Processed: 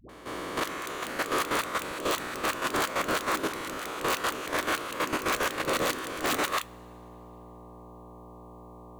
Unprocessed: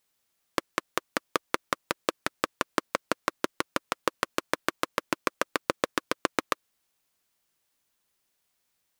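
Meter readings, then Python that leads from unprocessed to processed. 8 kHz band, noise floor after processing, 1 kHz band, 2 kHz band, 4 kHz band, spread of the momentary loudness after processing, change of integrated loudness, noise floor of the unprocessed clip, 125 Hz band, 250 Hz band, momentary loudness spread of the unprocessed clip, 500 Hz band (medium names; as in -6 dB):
+4.5 dB, -48 dBFS, +2.0 dB, +2.5 dB, +3.0 dB, 21 LU, +2.0 dB, -77 dBFS, +4.5 dB, +1.5 dB, 3 LU, +1.5 dB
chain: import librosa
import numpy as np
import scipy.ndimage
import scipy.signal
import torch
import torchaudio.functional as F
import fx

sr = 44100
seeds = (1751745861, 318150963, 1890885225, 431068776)

y = fx.spec_swells(x, sr, rise_s=1.52)
y = (np.mod(10.0 ** (13.5 / 20.0) * y + 1.0, 2.0) - 1.0) / 10.0 ** (13.5 / 20.0)
y = fx.dmg_buzz(y, sr, base_hz=60.0, harmonics=20, level_db=-47.0, tilt_db=-2, odd_only=False)
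y = fx.peak_eq(y, sr, hz=5200.0, db=-6.0, octaves=0.26)
y = fx.dispersion(y, sr, late='highs', ms=93.0, hz=410.0)
y = fx.level_steps(y, sr, step_db=12)
y = 10.0 ** (-20.5 / 20.0) * np.tanh(y / 10.0 ** (-20.5 / 20.0))
y = fx.rev_double_slope(y, sr, seeds[0], early_s=0.2, late_s=2.8, knee_db=-21, drr_db=14.5)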